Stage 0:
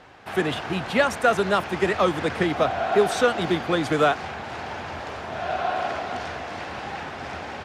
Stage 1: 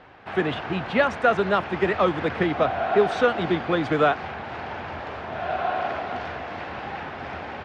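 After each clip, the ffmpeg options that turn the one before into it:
-af "lowpass=3.2k"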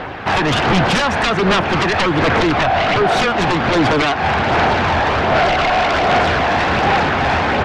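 -af "acompressor=threshold=-26dB:ratio=10,aeval=exprs='0.112*sin(PI/2*3.16*val(0)/0.112)':c=same,aphaser=in_gain=1:out_gain=1:delay=1.2:decay=0.24:speed=1.3:type=sinusoidal,volume=7dB"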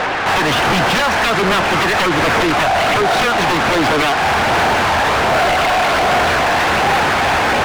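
-filter_complex "[0:a]asplit=2[a][b];[b]highpass=f=720:p=1,volume=25dB,asoftclip=type=tanh:threshold=-9.5dB[c];[a][c]amix=inputs=2:normalize=0,lowpass=f=4.3k:p=1,volume=-6dB,volume=-1dB"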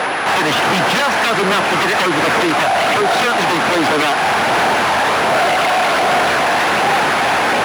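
-af "highpass=160,aeval=exprs='val(0)+0.0112*sin(2*PI*10000*n/s)':c=same"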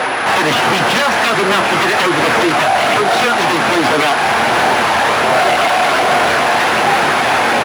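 -filter_complex "[0:a]flanger=delay=7.8:depth=1.1:regen=-50:speed=1.5:shape=triangular,asplit=2[a][b];[b]adelay=26,volume=-13dB[c];[a][c]amix=inputs=2:normalize=0,volume=5.5dB"

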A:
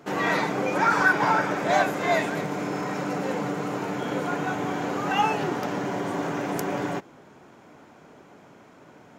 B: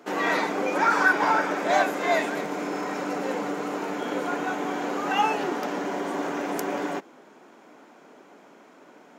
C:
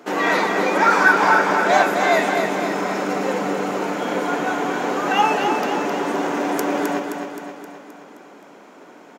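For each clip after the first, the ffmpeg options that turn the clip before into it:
-af "highpass=f=220:w=0.5412,highpass=f=220:w=1.3066"
-af "aecho=1:1:262|524|786|1048|1310|1572|1834:0.501|0.276|0.152|0.0834|0.0459|0.0252|0.0139,volume=5.5dB"

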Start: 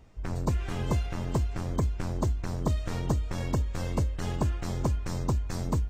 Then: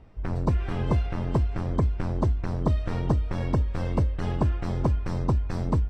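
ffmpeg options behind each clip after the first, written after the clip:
-af "aemphasis=mode=reproduction:type=75fm,bandreject=f=6.8k:w=5.3,volume=3dB"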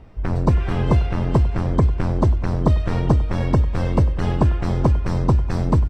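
-af "aecho=1:1:98|196|294|392|490:0.119|0.0701|0.0414|0.0244|0.0144,volume=7dB"

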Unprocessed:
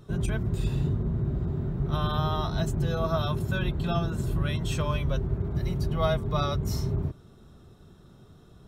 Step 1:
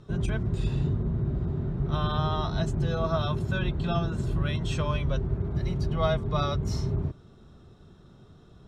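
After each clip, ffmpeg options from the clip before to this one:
-af "lowpass=6.6k"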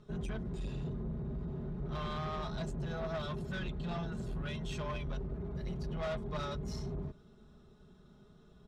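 -af "aecho=1:1:4.8:0.64,asoftclip=type=tanh:threshold=-25dB,volume=-8dB"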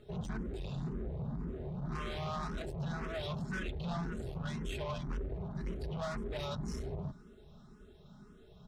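-filter_complex "[0:a]asoftclip=type=tanh:threshold=-38dB,asplit=2[a][b];[b]afreqshift=1.9[c];[a][c]amix=inputs=2:normalize=1,volume=6dB"

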